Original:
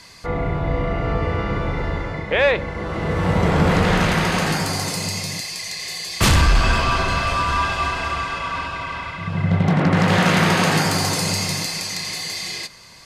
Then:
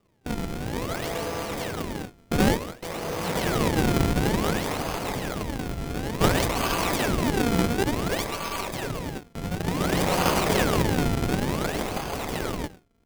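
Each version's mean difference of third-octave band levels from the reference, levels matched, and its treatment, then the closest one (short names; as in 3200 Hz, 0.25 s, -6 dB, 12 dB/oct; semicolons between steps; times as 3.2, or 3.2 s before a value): 9.0 dB: HPF 710 Hz 6 dB/oct; decimation with a swept rate 36×, swing 160% 0.56 Hz; gate with hold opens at -24 dBFS; running maximum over 17 samples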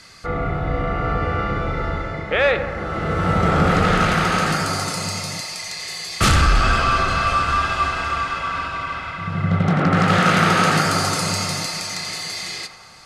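1.5 dB: LPF 12000 Hz 24 dB/oct; bell 1300 Hz +11.5 dB 0.24 oct; notch 1000 Hz, Q 5.7; on a send: narrowing echo 92 ms, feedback 84%, band-pass 910 Hz, level -9 dB; on the sum: gain -1 dB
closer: second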